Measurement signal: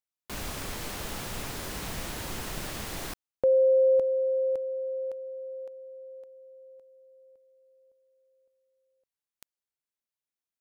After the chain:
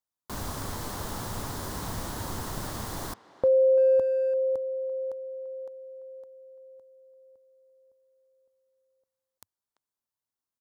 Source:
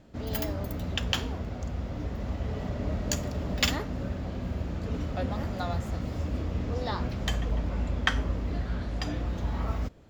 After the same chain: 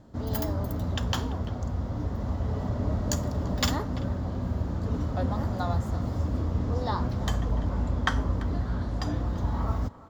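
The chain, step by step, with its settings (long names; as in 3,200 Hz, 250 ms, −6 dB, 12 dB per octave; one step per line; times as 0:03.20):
graphic EQ with 15 bands 100 Hz +7 dB, 250 Hz +3 dB, 1,000 Hz +6 dB, 2,500 Hz −10 dB
far-end echo of a speakerphone 340 ms, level −16 dB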